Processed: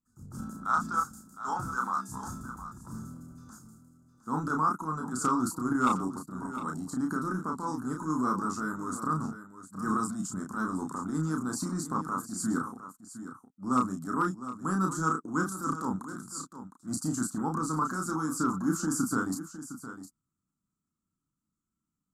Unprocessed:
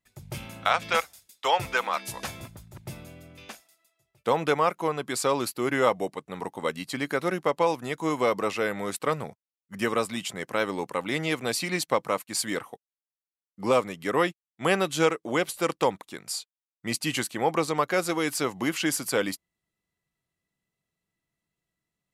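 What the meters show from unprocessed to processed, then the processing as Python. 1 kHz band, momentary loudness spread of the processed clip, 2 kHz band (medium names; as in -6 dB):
-2.0 dB, 15 LU, -9.0 dB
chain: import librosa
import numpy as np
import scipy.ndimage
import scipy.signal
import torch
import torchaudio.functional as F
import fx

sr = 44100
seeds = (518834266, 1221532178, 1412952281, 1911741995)

y = fx.curve_eq(x, sr, hz=(130.0, 260.0, 570.0, 840.0, 1400.0, 2100.0, 2900.0, 4600.0, 7400.0, 11000.0), db=(0, 9, -27, -12, -2, -22, -24, -4, 10, -1))
y = fx.transient(y, sr, attack_db=-10, sustain_db=5)
y = fx.high_shelf_res(y, sr, hz=1700.0, db=-9.0, q=3.0)
y = fx.hpss(y, sr, part='harmonic', gain_db=-4)
y = np.clip(y, -10.0 ** (-18.0 / 20.0), 10.0 ** (-18.0 / 20.0))
y = fx.doubler(y, sr, ms=32.0, db=-3.5)
y = y + 10.0 ** (-12.5 / 20.0) * np.pad(y, (int(710 * sr / 1000.0), 0))[:len(y)]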